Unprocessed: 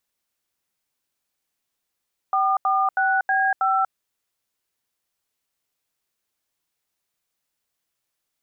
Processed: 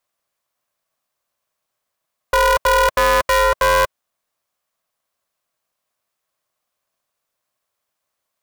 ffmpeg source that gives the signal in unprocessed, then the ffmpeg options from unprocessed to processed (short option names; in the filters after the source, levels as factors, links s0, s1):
-f lavfi -i "aevalsrc='0.1*clip(min(mod(t,0.32),0.239-mod(t,0.32))/0.002,0,1)*(eq(floor(t/0.32),0)*(sin(2*PI*770*mod(t,0.32))+sin(2*PI*1209*mod(t,0.32)))+eq(floor(t/0.32),1)*(sin(2*PI*770*mod(t,0.32))+sin(2*PI*1209*mod(t,0.32)))+eq(floor(t/0.32),2)*(sin(2*PI*770*mod(t,0.32))+sin(2*PI*1477*mod(t,0.32)))+eq(floor(t/0.32),3)*(sin(2*PI*770*mod(t,0.32))+sin(2*PI*1633*mod(t,0.32)))+eq(floor(t/0.32),4)*(sin(2*PI*770*mod(t,0.32))+sin(2*PI*1336*mod(t,0.32))))':d=1.6:s=44100"
-af "asoftclip=type=tanh:threshold=0.133,highpass=f=850:t=q:w=5.5,aeval=exprs='val(0)*sgn(sin(2*PI*240*n/s))':c=same"